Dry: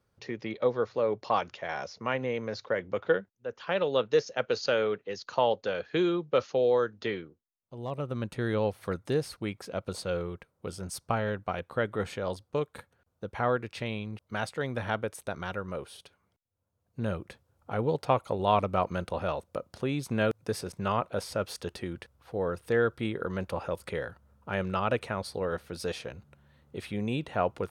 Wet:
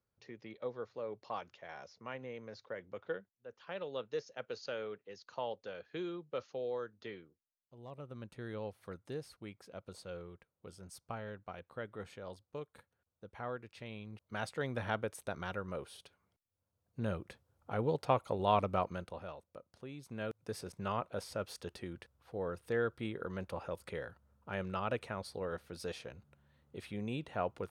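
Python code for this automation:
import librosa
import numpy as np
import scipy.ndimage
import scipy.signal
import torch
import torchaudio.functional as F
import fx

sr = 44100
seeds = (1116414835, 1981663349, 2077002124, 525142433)

y = fx.gain(x, sr, db=fx.line((13.77, -14.0), (14.55, -5.0), (18.74, -5.0), (19.38, -17.0), (19.98, -17.0), (20.64, -8.0)))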